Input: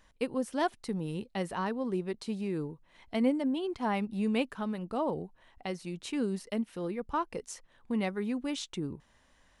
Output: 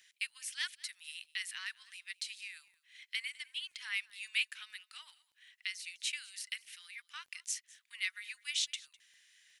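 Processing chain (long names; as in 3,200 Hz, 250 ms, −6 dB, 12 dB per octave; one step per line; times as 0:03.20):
Butterworth high-pass 1,900 Hz 36 dB per octave
surface crackle 11 per second −63 dBFS
on a send: single-tap delay 204 ms −22.5 dB
on the sum: level +6.5 dB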